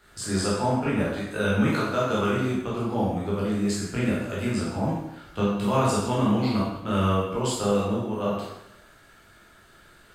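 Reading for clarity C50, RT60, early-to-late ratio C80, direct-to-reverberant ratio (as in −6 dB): 0.0 dB, 0.85 s, 3.0 dB, −7.0 dB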